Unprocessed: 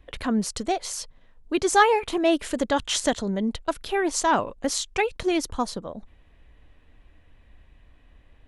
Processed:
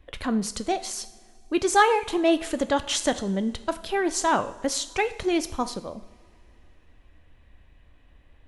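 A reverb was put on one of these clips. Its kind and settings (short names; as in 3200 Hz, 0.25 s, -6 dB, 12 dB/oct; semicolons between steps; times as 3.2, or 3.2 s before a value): two-slope reverb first 0.66 s, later 3 s, from -18 dB, DRR 11 dB; gain -1 dB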